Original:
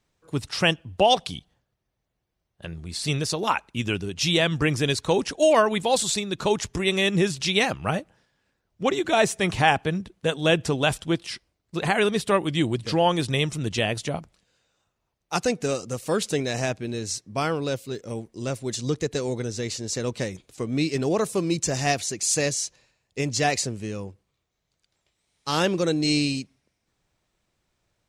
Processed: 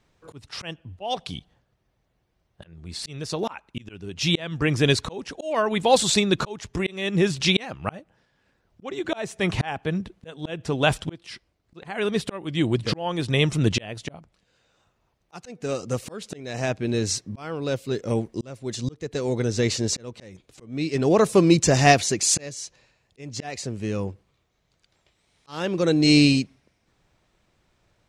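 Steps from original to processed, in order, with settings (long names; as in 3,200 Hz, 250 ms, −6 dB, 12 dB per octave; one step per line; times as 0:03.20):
high-shelf EQ 6,200 Hz −10 dB
volume swells 786 ms
level +8.5 dB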